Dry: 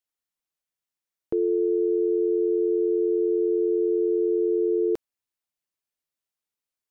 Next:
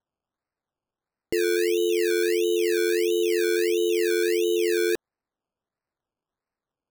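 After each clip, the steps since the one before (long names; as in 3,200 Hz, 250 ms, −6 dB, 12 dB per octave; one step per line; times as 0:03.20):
sample-and-hold swept by an LFO 18×, swing 60% 1.5 Hz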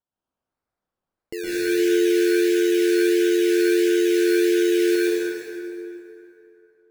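dense smooth reverb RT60 2.9 s, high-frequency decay 0.6×, pre-delay 105 ms, DRR −8.5 dB
level −7 dB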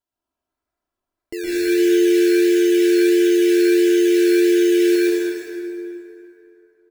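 comb filter 3 ms, depth 72%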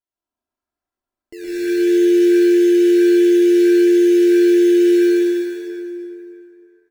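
high-shelf EQ 9,600 Hz −3 dB
single-tap delay 340 ms −9.5 dB
reverb whose tail is shaped and stops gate 170 ms rising, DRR 0.5 dB
level −7 dB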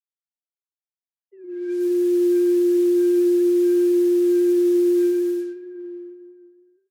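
three sine waves on the formant tracks
noise that follows the level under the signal 27 dB
low-pass that shuts in the quiet parts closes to 900 Hz, open at −14.5 dBFS
level −5.5 dB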